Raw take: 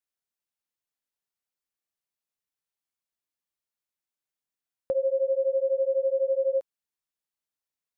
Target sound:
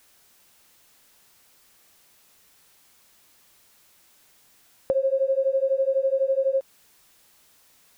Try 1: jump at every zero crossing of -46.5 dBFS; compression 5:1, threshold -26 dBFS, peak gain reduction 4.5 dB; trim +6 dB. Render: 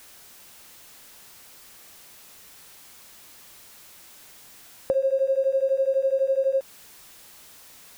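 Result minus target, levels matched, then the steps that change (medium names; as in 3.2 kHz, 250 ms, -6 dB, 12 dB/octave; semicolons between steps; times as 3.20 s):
jump at every zero crossing: distortion +10 dB
change: jump at every zero crossing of -56.5 dBFS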